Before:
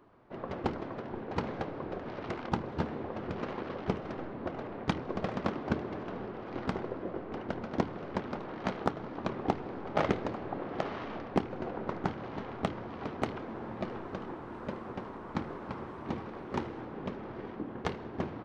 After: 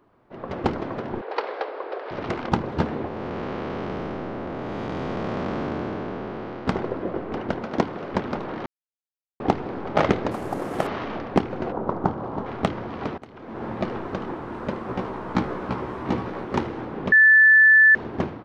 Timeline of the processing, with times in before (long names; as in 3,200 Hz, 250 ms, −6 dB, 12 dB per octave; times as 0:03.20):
0:01.21–0:02.11: elliptic band-pass filter 430–4,900 Hz
0:03.07–0:06.67: spectrum smeared in time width 415 ms
0:07.55–0:08.13: low-shelf EQ 130 Hz −9 dB
0:08.66–0:09.40: silence
0:10.31–0:10.87: variable-slope delta modulation 64 kbit/s
0:11.72–0:12.46: high shelf with overshoot 1,500 Hz −10 dB, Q 1.5
0:13.18–0:13.64: fade in quadratic, from −22 dB
0:14.87–0:16.45: double-tracking delay 16 ms −3 dB
0:17.12–0:17.95: beep over 1,750 Hz −19.5 dBFS
whole clip: automatic gain control gain up to 9.5 dB